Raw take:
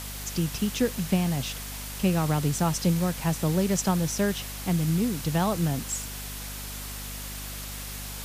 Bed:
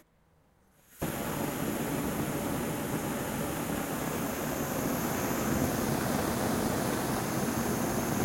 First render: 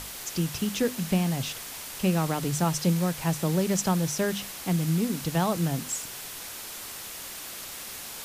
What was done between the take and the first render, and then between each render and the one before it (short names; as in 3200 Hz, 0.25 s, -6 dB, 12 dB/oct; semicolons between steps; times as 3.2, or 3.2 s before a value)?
notches 50/100/150/200/250 Hz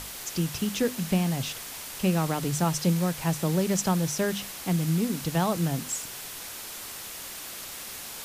nothing audible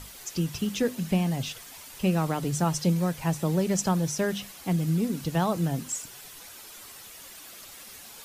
denoiser 9 dB, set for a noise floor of -40 dBFS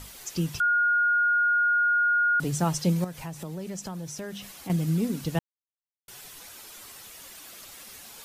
0.6–2.4 bleep 1430 Hz -19.5 dBFS; 3.04–4.7 compressor 3:1, threshold -36 dBFS; 5.39–6.08 mute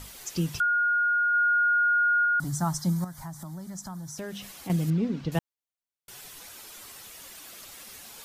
0.63–1.34 bell 480 Hz -3.5 dB 2.9 oct; 2.25–4.18 fixed phaser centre 1100 Hz, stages 4; 4.9–5.32 air absorption 200 m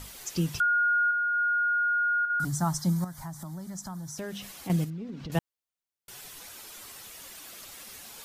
1.06–2.47 doubler 48 ms -5 dB; 4.84–5.3 compressor, threshold -35 dBFS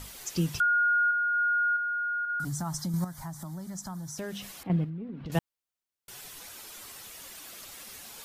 1.76–2.94 compressor, threshold -29 dBFS; 4.63–5.26 air absorption 460 m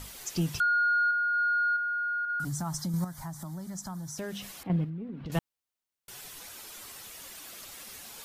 soft clip -18 dBFS, distortion -24 dB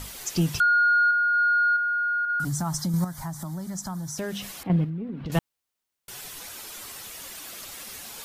gain +5.5 dB